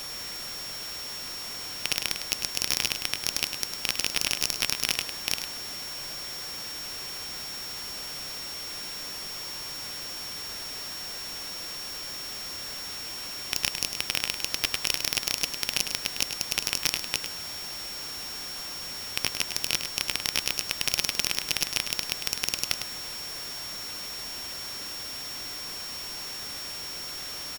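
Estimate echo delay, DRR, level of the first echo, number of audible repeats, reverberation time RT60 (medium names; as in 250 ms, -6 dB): 103 ms, no reverb, -8.5 dB, 1, no reverb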